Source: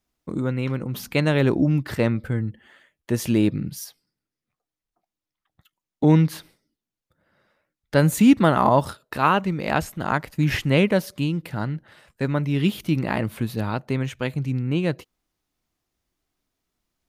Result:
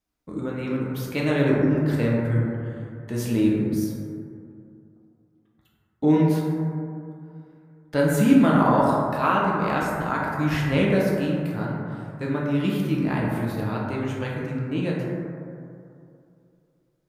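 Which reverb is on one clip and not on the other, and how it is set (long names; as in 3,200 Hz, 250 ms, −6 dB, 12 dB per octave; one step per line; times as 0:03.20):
dense smooth reverb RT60 2.6 s, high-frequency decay 0.25×, DRR −4.5 dB
level −7 dB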